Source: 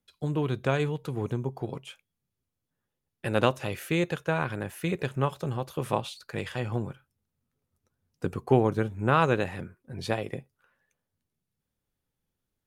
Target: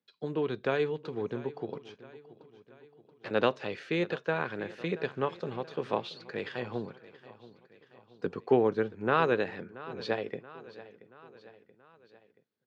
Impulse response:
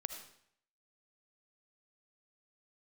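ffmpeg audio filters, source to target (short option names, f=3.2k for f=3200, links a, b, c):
-filter_complex "[0:a]asettb=1/sr,asplit=3[a][b][c];[a]atrim=end=1.794[d];[b]atrim=start=1.79:end=3.31,asetpts=PTS-STARTPTS,afade=t=in:d=0.004:c=qsin,afade=t=out:st=1.516:d=0.004:c=qsin,aeval=exprs='max(val(0),0)':c=same[e];[c]atrim=start=3.306[f];[d][e]acrossfade=d=0.004:c1=hsin:c2=qsin[g];[g][f]acrossfade=d=0.004:c1=qsin:c2=hsin,highpass=f=130:w=0.5412,highpass=f=130:w=1.3066,equalizer=f=140:t=q:w=4:g=-8,equalizer=f=440:t=q:w=4:g=6,equalizer=f=1.7k:t=q:w=4:g=4,equalizer=f=4.3k:t=q:w=4:g=4,lowpass=f=5.1k:w=0.5412,lowpass=f=5.1k:w=1.3066,asplit=2[h][i];[i]aecho=0:1:679|1358|2037|2716:0.126|0.0667|0.0354|0.0187[j];[h][j]amix=inputs=2:normalize=0,volume=-4dB"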